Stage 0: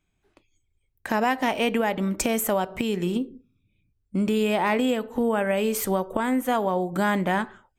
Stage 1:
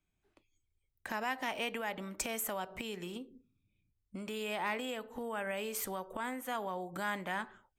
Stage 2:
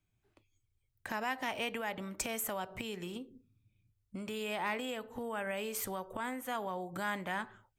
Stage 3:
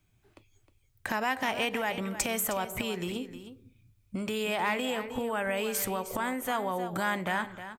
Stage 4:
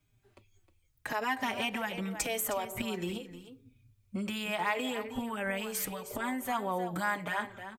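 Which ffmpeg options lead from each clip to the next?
ffmpeg -i in.wav -filter_complex "[0:a]acrossover=split=540|910[link_01][link_02][link_03];[link_01]acompressor=threshold=-35dB:ratio=5[link_04];[link_02]alimiter=level_in=6.5dB:limit=-24dB:level=0:latency=1,volume=-6.5dB[link_05];[link_04][link_05][link_03]amix=inputs=3:normalize=0,volume=-9dB" out.wav
ffmpeg -i in.wav -af "equalizer=frequency=110:width_type=o:width=0.48:gain=12.5" out.wav
ffmpeg -i in.wav -filter_complex "[0:a]asplit=2[link_01][link_02];[link_02]acompressor=threshold=-45dB:ratio=6,volume=1dB[link_03];[link_01][link_03]amix=inputs=2:normalize=0,aecho=1:1:311:0.251,volume=4dB" out.wav
ffmpeg -i in.wav -filter_complex "[0:a]asplit=2[link_01][link_02];[link_02]adelay=4.4,afreqshift=-0.82[link_03];[link_01][link_03]amix=inputs=2:normalize=1" out.wav

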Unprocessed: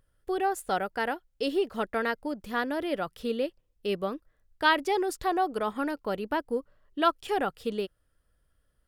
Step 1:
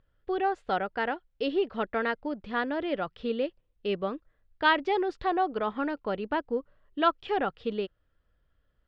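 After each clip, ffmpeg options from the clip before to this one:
ffmpeg -i in.wav -af "lowpass=frequency=3900:width=0.5412,lowpass=frequency=3900:width=1.3066" out.wav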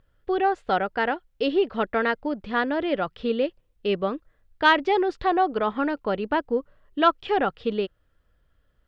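ffmpeg -i in.wav -af "acontrast=35" out.wav

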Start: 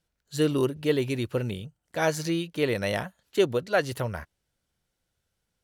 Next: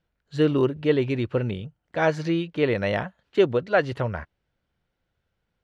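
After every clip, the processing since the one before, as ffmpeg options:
ffmpeg -i in.wav -af "lowpass=2800,volume=3.5dB" out.wav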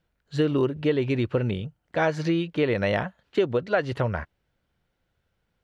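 ffmpeg -i in.wav -af "acompressor=threshold=-22dB:ratio=4,volume=2.5dB" out.wav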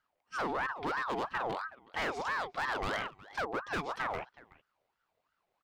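ffmpeg -i in.wav -filter_complex "[0:a]asplit=2[link_01][link_02];[link_02]adelay=370,highpass=300,lowpass=3400,asoftclip=type=hard:threshold=-19dB,volume=-21dB[link_03];[link_01][link_03]amix=inputs=2:normalize=0,volume=24.5dB,asoftclip=hard,volume=-24.5dB,aeval=exprs='val(0)*sin(2*PI*1000*n/s+1000*0.45/3*sin(2*PI*3*n/s))':channel_layout=same,volume=-4dB" out.wav

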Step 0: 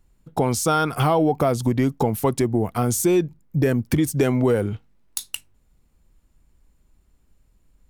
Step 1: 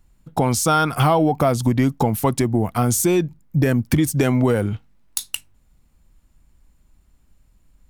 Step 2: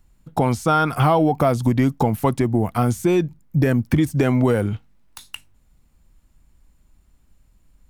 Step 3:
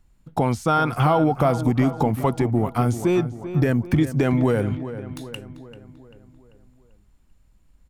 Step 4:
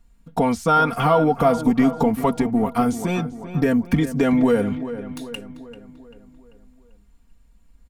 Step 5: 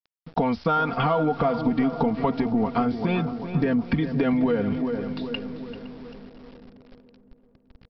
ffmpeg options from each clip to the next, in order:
ffmpeg -i in.wav -af "equalizer=frequency=420:width_type=o:width=0.63:gain=-5.5,volume=3.5dB" out.wav
ffmpeg -i in.wav -filter_complex "[0:a]acrossover=split=2600[link_01][link_02];[link_02]acompressor=threshold=-35dB:ratio=4:attack=1:release=60[link_03];[link_01][link_03]amix=inputs=2:normalize=0" out.wav
ffmpeg -i in.wav -filter_complex "[0:a]highshelf=frequency=9900:gain=-6,asplit=2[link_01][link_02];[link_02]adelay=391,lowpass=frequency=2800:poles=1,volume=-12dB,asplit=2[link_03][link_04];[link_04]adelay=391,lowpass=frequency=2800:poles=1,volume=0.53,asplit=2[link_05][link_06];[link_06]adelay=391,lowpass=frequency=2800:poles=1,volume=0.53,asplit=2[link_07][link_08];[link_08]adelay=391,lowpass=frequency=2800:poles=1,volume=0.53,asplit=2[link_09][link_10];[link_10]adelay=391,lowpass=frequency=2800:poles=1,volume=0.53,asplit=2[link_11][link_12];[link_12]adelay=391,lowpass=frequency=2800:poles=1,volume=0.53[link_13];[link_03][link_05][link_07][link_09][link_11][link_13]amix=inputs=6:normalize=0[link_14];[link_01][link_14]amix=inputs=2:normalize=0,volume=-2dB" out.wav
ffmpeg -i in.wav -af "aecho=1:1:4.3:0.75" out.wav
ffmpeg -i in.wav -filter_complex "[0:a]acompressor=threshold=-21dB:ratio=4,aresample=11025,aeval=exprs='val(0)*gte(abs(val(0)),0.00531)':channel_layout=same,aresample=44100,asplit=2[link_01][link_02];[link_02]adelay=513,lowpass=frequency=1200:poles=1,volume=-14dB,asplit=2[link_03][link_04];[link_04]adelay=513,lowpass=frequency=1200:poles=1,volume=0.54,asplit=2[link_05][link_06];[link_06]adelay=513,lowpass=frequency=1200:poles=1,volume=0.54,asplit=2[link_07][link_08];[link_08]adelay=513,lowpass=frequency=1200:poles=1,volume=0.54,asplit=2[link_09][link_10];[link_10]adelay=513,lowpass=frequency=1200:poles=1,volume=0.54[link_11];[link_01][link_03][link_05][link_07][link_09][link_11]amix=inputs=6:normalize=0,volume=1dB" out.wav

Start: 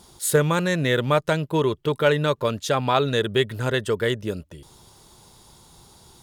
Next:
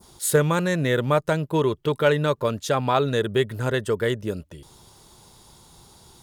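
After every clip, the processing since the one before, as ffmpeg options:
ffmpeg -i in.wav -af "adynamicequalizer=threshold=0.01:dfrequency=3300:dqfactor=0.83:tfrequency=3300:tqfactor=0.83:attack=5:release=100:ratio=0.375:range=3:mode=cutabove:tftype=bell" out.wav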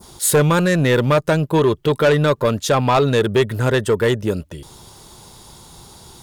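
ffmpeg -i in.wav -af "asoftclip=type=tanh:threshold=-17dB,volume=8.5dB" out.wav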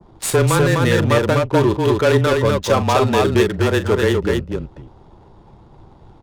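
ffmpeg -i in.wav -filter_complex "[0:a]adynamicsmooth=sensitivity=4.5:basefreq=710,afreqshift=-23,asplit=2[link_01][link_02];[link_02]aecho=0:1:40.82|250.7:0.251|0.708[link_03];[link_01][link_03]amix=inputs=2:normalize=0,volume=-1dB" out.wav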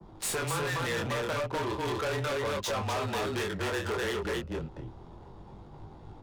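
ffmpeg -i in.wav -filter_complex "[0:a]flanger=delay=19:depth=6.8:speed=0.33,acrossover=split=92|540[link_01][link_02][link_03];[link_01]acompressor=threshold=-42dB:ratio=4[link_04];[link_02]acompressor=threshold=-33dB:ratio=4[link_05];[link_03]acompressor=threshold=-24dB:ratio=4[link_06];[link_04][link_05][link_06]amix=inputs=3:normalize=0,asoftclip=type=tanh:threshold=-28dB" out.wav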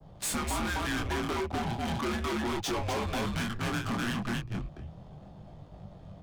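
ffmpeg -i in.wav -af "afreqshift=-200" out.wav

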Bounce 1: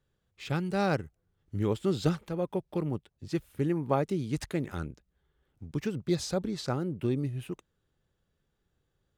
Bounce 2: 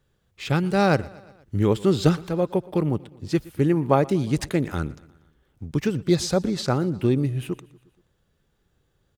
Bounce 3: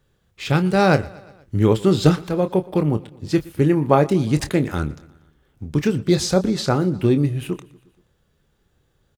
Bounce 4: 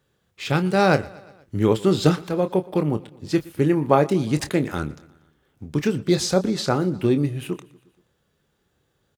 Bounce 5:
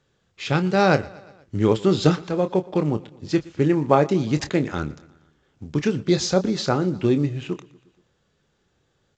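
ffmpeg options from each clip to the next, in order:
ffmpeg -i in.wav -af "aecho=1:1:119|238|357|476:0.0794|0.0469|0.0277|0.0163,volume=8.5dB" out.wav
ffmpeg -i in.wav -filter_complex "[0:a]asplit=2[link_01][link_02];[link_02]adelay=27,volume=-10.5dB[link_03];[link_01][link_03]amix=inputs=2:normalize=0,volume=3.5dB" out.wav
ffmpeg -i in.wav -af "highpass=frequency=150:poles=1,volume=-1dB" out.wav
ffmpeg -i in.wav -ar 16000 -c:a pcm_mulaw out.wav

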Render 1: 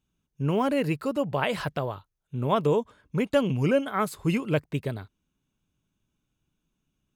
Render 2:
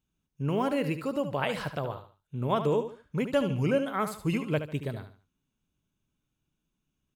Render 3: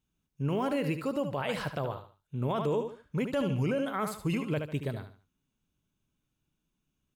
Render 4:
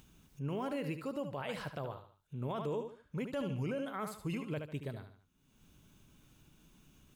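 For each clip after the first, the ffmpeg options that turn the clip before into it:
ffmpeg -i in.wav -af "aecho=1:1:73|146|219:0.316|0.098|0.0304,volume=-3.5dB" out.wav
ffmpeg -i in.wav -af "alimiter=limit=-22dB:level=0:latency=1:release=17" out.wav
ffmpeg -i in.wav -af "acompressor=mode=upward:threshold=-34dB:ratio=2.5,volume=-7.5dB" out.wav

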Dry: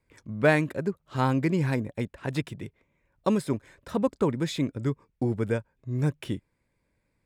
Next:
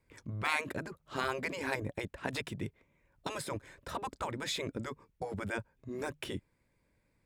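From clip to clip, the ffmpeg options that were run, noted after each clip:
ffmpeg -i in.wav -af "afftfilt=real='re*lt(hypot(re,im),0.178)':imag='im*lt(hypot(re,im),0.178)':win_size=1024:overlap=0.75" out.wav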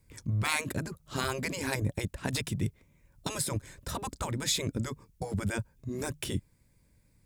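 ffmpeg -i in.wav -af "bass=frequency=250:gain=11,treble=frequency=4000:gain=13" out.wav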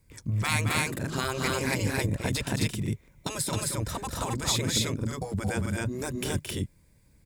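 ffmpeg -i in.wav -af "aecho=1:1:221.6|265.3:0.501|0.891,volume=1.5dB" out.wav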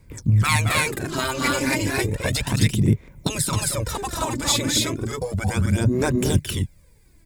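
ffmpeg -i in.wav -af "aphaser=in_gain=1:out_gain=1:delay=3.5:decay=0.61:speed=0.33:type=sinusoidal,volume=4.5dB" out.wav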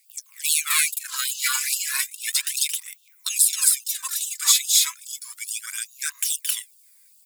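ffmpeg -i in.wav -af "aemphasis=mode=production:type=75kf,afftfilt=real='re*gte(b*sr/1024,900*pow(2700/900,0.5+0.5*sin(2*PI*2.4*pts/sr)))':imag='im*gte(b*sr/1024,900*pow(2700/900,0.5+0.5*sin(2*PI*2.4*pts/sr)))':win_size=1024:overlap=0.75,volume=-4.5dB" out.wav

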